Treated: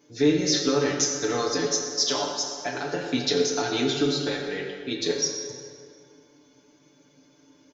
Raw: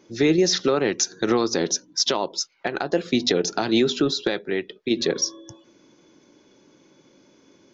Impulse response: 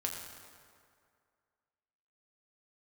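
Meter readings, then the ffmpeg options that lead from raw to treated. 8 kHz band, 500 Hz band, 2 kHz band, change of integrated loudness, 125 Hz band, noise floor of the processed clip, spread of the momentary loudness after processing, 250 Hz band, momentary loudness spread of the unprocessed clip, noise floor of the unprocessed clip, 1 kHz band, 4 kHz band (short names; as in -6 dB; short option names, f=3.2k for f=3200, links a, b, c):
n/a, -3.0 dB, -2.5 dB, -2.5 dB, -1.5 dB, -60 dBFS, 10 LU, -3.5 dB, 8 LU, -58 dBFS, -2.5 dB, -1.5 dB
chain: -filter_complex "[0:a]aecho=1:1:6.9:0.93,crystalizer=i=1:c=0[a];[1:a]atrim=start_sample=2205[b];[a][b]afir=irnorm=-1:irlink=0,volume=-8dB"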